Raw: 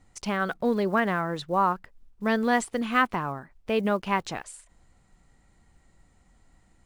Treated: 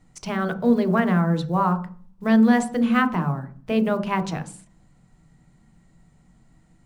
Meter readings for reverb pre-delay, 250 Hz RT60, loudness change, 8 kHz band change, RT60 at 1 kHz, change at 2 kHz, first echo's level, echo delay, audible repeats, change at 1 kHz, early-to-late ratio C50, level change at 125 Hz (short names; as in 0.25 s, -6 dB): 3 ms, 0.80 s, +5.0 dB, 0.0 dB, 0.40 s, 0.0 dB, none, none, none, +1.0 dB, 13.5 dB, +11.0 dB